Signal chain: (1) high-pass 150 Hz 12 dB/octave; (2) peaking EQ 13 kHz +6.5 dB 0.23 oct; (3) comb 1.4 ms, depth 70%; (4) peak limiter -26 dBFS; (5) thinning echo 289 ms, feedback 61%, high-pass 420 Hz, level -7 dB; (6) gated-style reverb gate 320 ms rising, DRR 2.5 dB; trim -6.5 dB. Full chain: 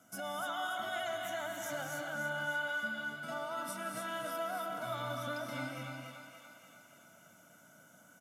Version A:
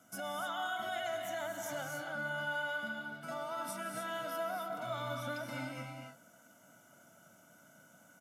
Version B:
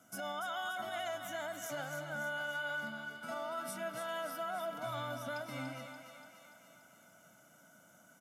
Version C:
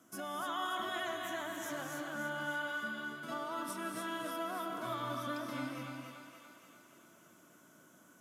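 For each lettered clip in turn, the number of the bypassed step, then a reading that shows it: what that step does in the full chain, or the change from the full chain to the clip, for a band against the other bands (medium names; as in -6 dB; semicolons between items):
5, echo-to-direct 0.0 dB to -2.5 dB; 6, echo-to-direct 0.0 dB to -6.0 dB; 3, 250 Hz band +6.0 dB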